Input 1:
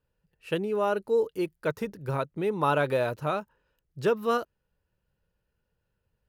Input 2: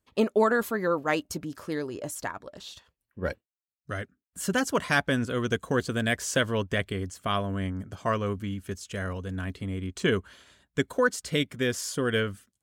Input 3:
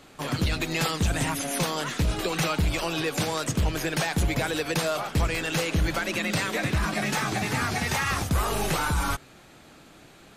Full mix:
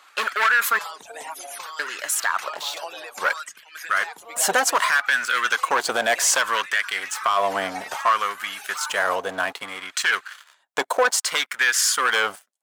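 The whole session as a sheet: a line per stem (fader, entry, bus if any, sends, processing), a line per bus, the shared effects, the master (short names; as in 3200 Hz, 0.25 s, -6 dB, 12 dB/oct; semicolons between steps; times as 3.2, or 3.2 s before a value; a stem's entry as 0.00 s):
-12.0 dB, 0.00 s, no send, compressor, threshold -28 dBFS, peak gain reduction 8.5 dB
+3.0 dB, 0.00 s, muted 0.79–1.79, no send, sample leveller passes 3
-1.0 dB, 0.00 s, no send, reverb removal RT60 1.4 s; notches 50/100/150 Hz; compressor 6:1, threshold -32 dBFS, peak gain reduction 11 dB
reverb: off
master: LFO high-pass sine 0.62 Hz 700–1600 Hz; limiter -10 dBFS, peak gain reduction 10 dB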